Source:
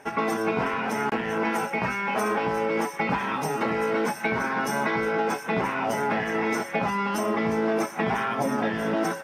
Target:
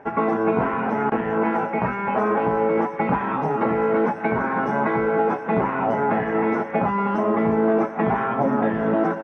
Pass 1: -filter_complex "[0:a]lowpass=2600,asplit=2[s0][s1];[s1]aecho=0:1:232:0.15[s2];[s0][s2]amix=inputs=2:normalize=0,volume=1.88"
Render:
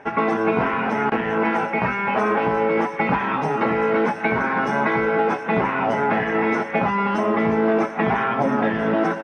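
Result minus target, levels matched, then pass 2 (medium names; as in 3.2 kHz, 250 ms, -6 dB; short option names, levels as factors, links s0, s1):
2 kHz band +4.5 dB
-filter_complex "[0:a]lowpass=1300,asplit=2[s0][s1];[s1]aecho=0:1:232:0.15[s2];[s0][s2]amix=inputs=2:normalize=0,volume=1.88"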